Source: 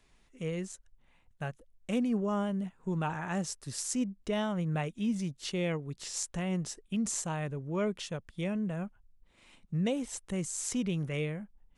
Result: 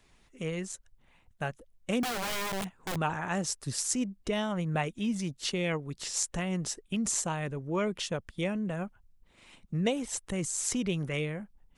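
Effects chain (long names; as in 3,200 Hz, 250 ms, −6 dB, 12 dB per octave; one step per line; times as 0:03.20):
harmonic and percussive parts rebalanced percussive +6 dB
0:02.03–0:02.96: wrap-around overflow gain 29 dB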